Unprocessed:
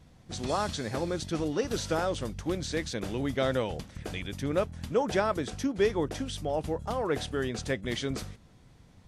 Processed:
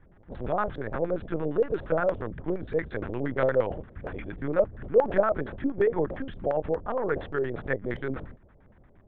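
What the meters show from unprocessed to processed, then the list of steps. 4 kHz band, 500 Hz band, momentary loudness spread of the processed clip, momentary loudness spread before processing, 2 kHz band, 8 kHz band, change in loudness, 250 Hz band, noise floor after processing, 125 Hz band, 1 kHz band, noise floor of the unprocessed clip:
below −15 dB, +4.5 dB, 10 LU, 8 LU, +1.5 dB, below −35 dB, +2.5 dB, −0.5 dB, −57 dBFS, −1.0 dB, +1.5 dB, −57 dBFS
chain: linear-prediction vocoder at 8 kHz pitch kept
auto-filter low-pass square 8.6 Hz 570–1,600 Hz

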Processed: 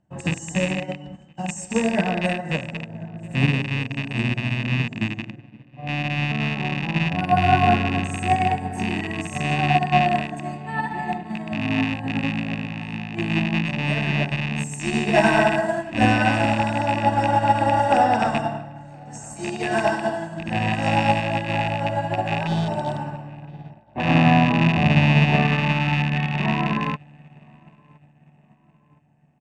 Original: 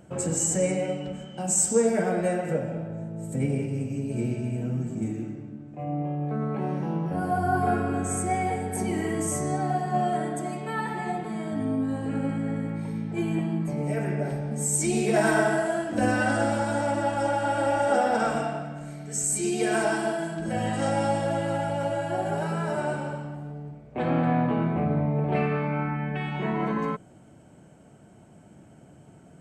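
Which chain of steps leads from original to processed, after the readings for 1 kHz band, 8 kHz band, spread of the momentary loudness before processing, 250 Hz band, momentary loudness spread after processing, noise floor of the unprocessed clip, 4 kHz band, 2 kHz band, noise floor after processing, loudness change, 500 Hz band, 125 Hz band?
+7.0 dB, −9.5 dB, 9 LU, +4.0 dB, 14 LU, −52 dBFS, +12.5 dB, +8.5 dB, −54 dBFS, +5.0 dB, +1.0 dB, +6.5 dB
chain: loose part that buzzes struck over −30 dBFS, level −17 dBFS
healed spectral selection 0:22.50–0:22.99, 940–3,000 Hz after
high-shelf EQ 11,000 Hz +5 dB
comb filter 1.1 ms, depth 59%
in parallel at +2 dB: brickwall limiter −20 dBFS, peak gain reduction 11 dB
on the sum: high-frequency loss of the air 91 metres
on a send: feedback echo with a low-pass in the loop 1,017 ms, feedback 69%, low-pass 2,400 Hz, level −14 dB
on the sum: expander for the loud parts 2.5 to 1, over −35 dBFS
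level +4 dB

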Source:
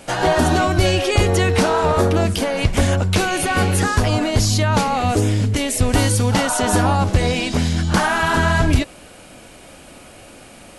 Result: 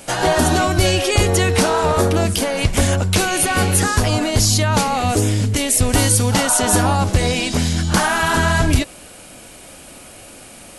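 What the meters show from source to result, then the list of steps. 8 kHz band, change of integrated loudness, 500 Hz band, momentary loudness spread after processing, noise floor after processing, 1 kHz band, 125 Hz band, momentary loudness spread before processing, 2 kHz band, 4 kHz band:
+6.5 dB, +1.0 dB, 0.0 dB, 4 LU, −40 dBFS, 0.0 dB, 0.0 dB, 3 LU, +1.0 dB, +2.5 dB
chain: high-shelf EQ 6,000 Hz +10 dB

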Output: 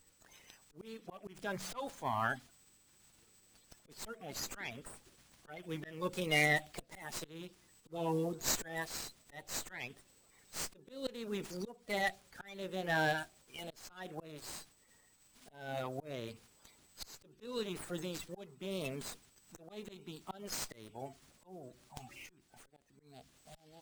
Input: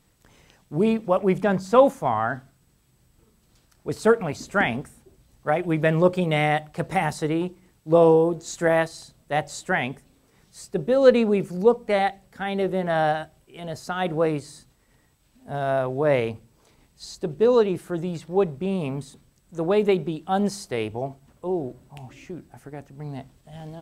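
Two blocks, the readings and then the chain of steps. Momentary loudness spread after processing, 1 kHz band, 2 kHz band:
19 LU, −16.5 dB, −9.5 dB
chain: spectral magnitudes quantised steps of 30 dB
volume swells 482 ms
first-order pre-emphasis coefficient 0.9
windowed peak hold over 3 samples
level +6.5 dB

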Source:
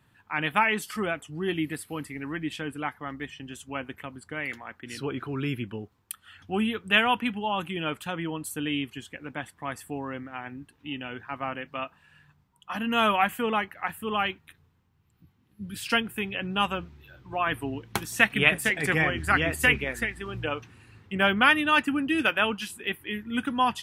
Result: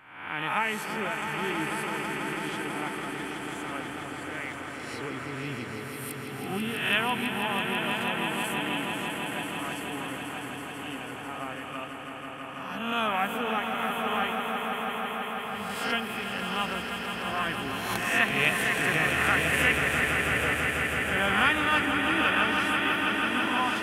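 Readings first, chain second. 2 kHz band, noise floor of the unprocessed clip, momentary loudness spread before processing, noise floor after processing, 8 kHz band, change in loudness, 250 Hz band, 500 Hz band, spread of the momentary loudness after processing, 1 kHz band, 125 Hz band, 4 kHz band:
+0.5 dB, −66 dBFS, 17 LU, −39 dBFS, +1.5 dB, −0.5 dB, −2.0 dB, −1.0 dB, 13 LU, 0.0 dB, −1.5 dB, +0.5 dB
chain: peak hold with a rise ahead of every peak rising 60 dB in 0.84 s
echo that builds up and dies away 164 ms, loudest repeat 5, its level −8 dB
level −7 dB

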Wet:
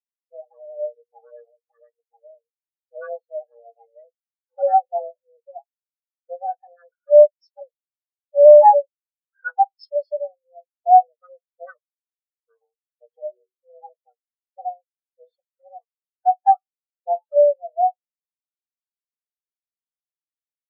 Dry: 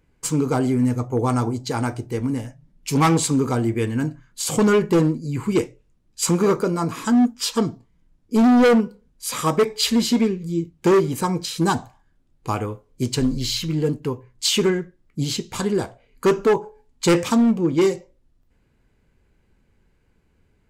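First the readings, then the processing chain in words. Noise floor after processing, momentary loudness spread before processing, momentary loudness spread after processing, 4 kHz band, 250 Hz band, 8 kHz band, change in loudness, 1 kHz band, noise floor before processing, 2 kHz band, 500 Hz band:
below −85 dBFS, 11 LU, 22 LU, below −30 dB, below −40 dB, below −40 dB, +4.5 dB, +8.0 dB, −63 dBFS, −10.5 dB, +4.0 dB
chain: auto-filter low-pass saw down 0.41 Hz 990–5,700 Hz
frequency shifter +350 Hz
every bin expanded away from the loudest bin 4 to 1
level +1.5 dB

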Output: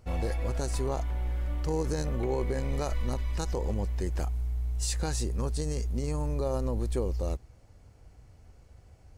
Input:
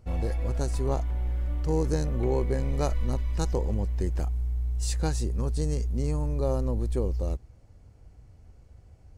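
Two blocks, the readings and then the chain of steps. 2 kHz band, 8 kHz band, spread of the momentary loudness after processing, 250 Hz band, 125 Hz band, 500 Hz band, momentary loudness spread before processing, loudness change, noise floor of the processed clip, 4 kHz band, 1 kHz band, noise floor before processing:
+1.5 dB, +2.0 dB, 3 LU, −3.0 dB, −3.5 dB, −2.0 dB, 4 LU, −3.0 dB, −56 dBFS, +1.5 dB, −0.5 dB, −54 dBFS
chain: low-shelf EQ 460 Hz −6.5 dB
brickwall limiter −24.5 dBFS, peak gain reduction 8.5 dB
level +4 dB

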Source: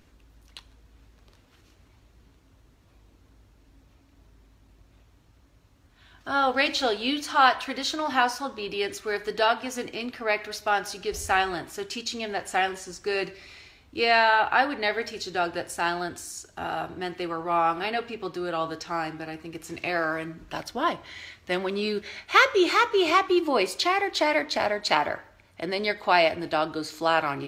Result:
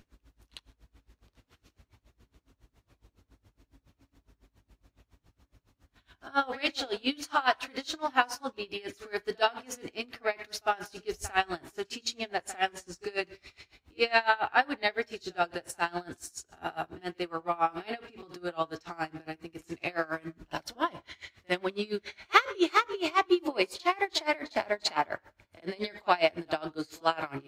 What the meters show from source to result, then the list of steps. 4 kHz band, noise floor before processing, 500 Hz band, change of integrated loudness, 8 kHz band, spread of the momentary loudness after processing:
−5.5 dB, −59 dBFS, −6.0 dB, −5.5 dB, −5.0 dB, 14 LU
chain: echo ahead of the sound 51 ms −15.5 dB
tremolo with a sine in dB 7.2 Hz, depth 25 dB

